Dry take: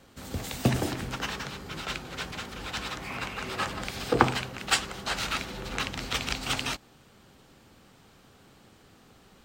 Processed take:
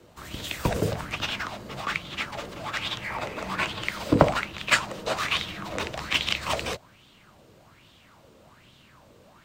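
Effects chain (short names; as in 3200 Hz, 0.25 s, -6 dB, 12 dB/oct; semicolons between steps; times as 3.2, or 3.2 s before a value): resonant low shelf 220 Hz -11 dB, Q 3; frequency shift -190 Hz; LFO bell 1.2 Hz 440–3500 Hz +13 dB; gain -1.5 dB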